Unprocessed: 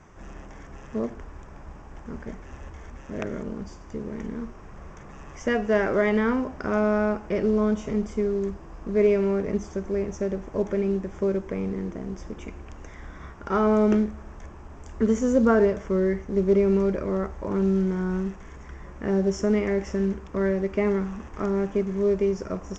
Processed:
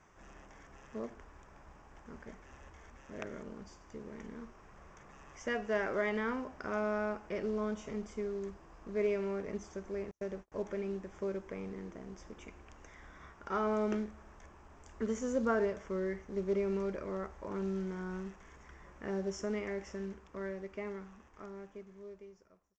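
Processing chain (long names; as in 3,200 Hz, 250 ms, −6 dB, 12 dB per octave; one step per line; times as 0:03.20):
fade-out on the ending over 3.68 s
0:10.11–0:10.52: noise gate −31 dBFS, range −41 dB
low-shelf EQ 450 Hz −8.5 dB
level −7.5 dB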